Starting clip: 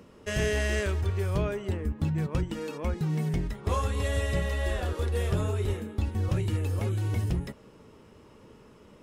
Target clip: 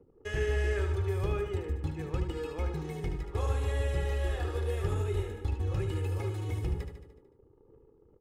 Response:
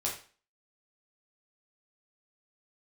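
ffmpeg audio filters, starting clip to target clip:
-filter_complex "[0:a]asplit=2[s0][s1];[s1]highpass=230,lowpass=3800[s2];[1:a]atrim=start_sample=2205[s3];[s2][s3]afir=irnorm=-1:irlink=0,volume=0.0841[s4];[s0][s4]amix=inputs=2:normalize=0,anlmdn=0.01,aecho=1:1:2.4:0.66,acrossover=split=2700[s5][s6];[s6]acompressor=threshold=0.00631:ratio=4:attack=1:release=60[s7];[s5][s7]amix=inputs=2:normalize=0,atempo=1.1,aecho=1:1:74|148|222|296|370|444|518:0.422|0.24|0.137|0.0781|0.0445|0.0254|0.0145,volume=0.501"

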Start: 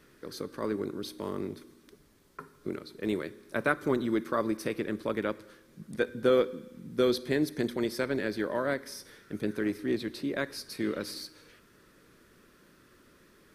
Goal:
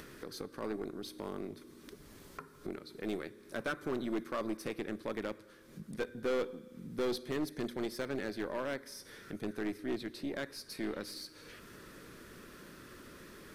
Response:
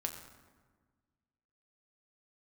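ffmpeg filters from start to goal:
-af "aeval=exprs='0.316*(cos(1*acos(clip(val(0)/0.316,-1,1)))-cos(1*PI/2))+0.0355*(cos(6*acos(clip(val(0)/0.316,-1,1)))-cos(6*PI/2))':c=same,acompressor=mode=upward:threshold=0.0224:ratio=2.5,volume=12.6,asoftclip=hard,volume=0.0794,volume=0.501"

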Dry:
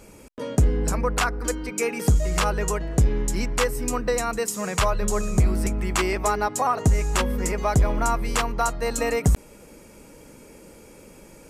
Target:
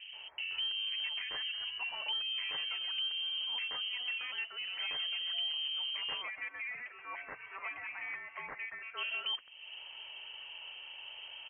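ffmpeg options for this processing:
-filter_complex "[0:a]asettb=1/sr,asplit=3[s0][s1][s2];[s0]atrim=end=6.214[s3];[s1]atrim=start=6.21:end=8.97,asetpts=PTS-STARTPTS,afade=t=in:d=0.004:c=qsin,afade=t=out:st=2.756:d=0.004:c=qsin,highpass=f=860:w=0.5412,highpass=f=860:w=1.3066[s4];[s2]atrim=start=8.966[s5];[s3][s4]acrossfade=d=0.004:c1=hsin:c2=qsin[s6];[s6][s5]acrossfade=d=0.004:c1=qsin:c2=hsin,acompressor=threshold=0.0158:ratio=3,asoftclip=type=tanh:threshold=0.0251,acrossover=split=1300[s7][s8];[s8]adelay=130[s9];[s7][s9]amix=inputs=2:normalize=0,lowpass=f=2700:t=q:w=0.5098,lowpass=f=2700:t=q:w=0.6013,lowpass=f=2700:t=q:w=0.9,lowpass=f=2700:t=q:w=2.563,afreqshift=-3200"

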